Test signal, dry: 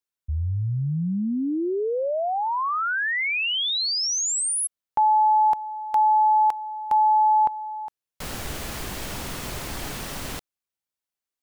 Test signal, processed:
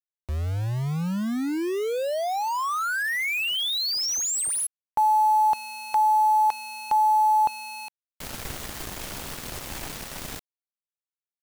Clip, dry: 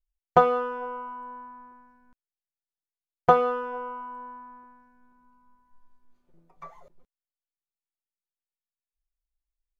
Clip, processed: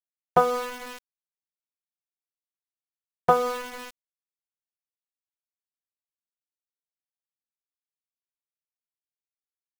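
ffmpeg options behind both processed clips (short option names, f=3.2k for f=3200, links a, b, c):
-af "aeval=exprs='val(0)*gte(abs(val(0)),0.0316)':c=same,volume=-1.5dB"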